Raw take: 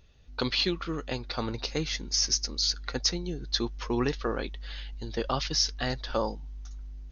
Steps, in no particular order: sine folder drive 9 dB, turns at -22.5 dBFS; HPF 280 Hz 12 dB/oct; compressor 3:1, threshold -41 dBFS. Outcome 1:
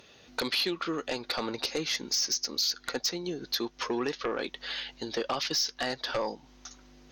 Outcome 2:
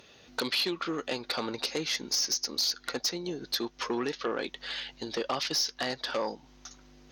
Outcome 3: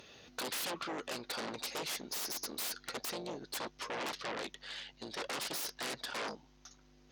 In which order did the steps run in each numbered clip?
compressor > HPF > sine folder; compressor > sine folder > HPF; sine folder > compressor > HPF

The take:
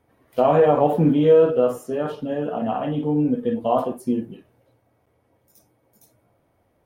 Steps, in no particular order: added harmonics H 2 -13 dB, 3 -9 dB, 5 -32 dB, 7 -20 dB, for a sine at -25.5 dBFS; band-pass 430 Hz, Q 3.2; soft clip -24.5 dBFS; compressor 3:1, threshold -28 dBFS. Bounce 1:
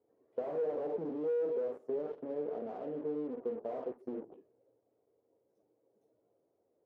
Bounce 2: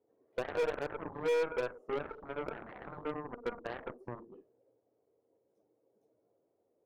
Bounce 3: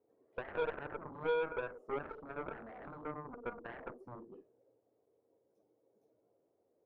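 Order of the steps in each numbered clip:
soft clip > compressor > added harmonics > band-pass; compressor > band-pass > added harmonics > soft clip; compressor > soft clip > band-pass > added harmonics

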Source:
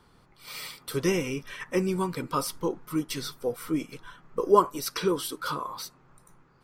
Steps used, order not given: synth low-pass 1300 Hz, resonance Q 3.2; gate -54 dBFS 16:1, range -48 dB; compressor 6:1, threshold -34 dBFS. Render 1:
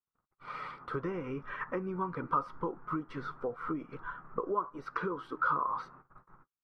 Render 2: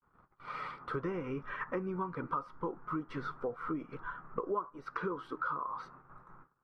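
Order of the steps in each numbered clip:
gate > compressor > synth low-pass; synth low-pass > gate > compressor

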